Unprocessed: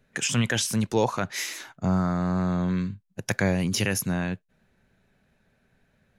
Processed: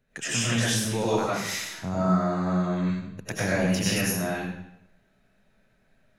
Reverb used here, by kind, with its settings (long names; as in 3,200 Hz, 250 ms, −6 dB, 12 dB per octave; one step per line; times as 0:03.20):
comb and all-pass reverb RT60 0.76 s, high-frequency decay 0.95×, pre-delay 60 ms, DRR −8 dB
level −7.5 dB